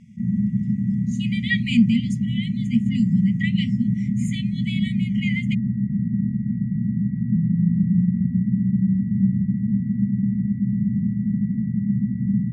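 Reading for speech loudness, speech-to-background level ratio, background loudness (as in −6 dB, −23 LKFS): −25.5 LKFS, −3.0 dB, −22.5 LKFS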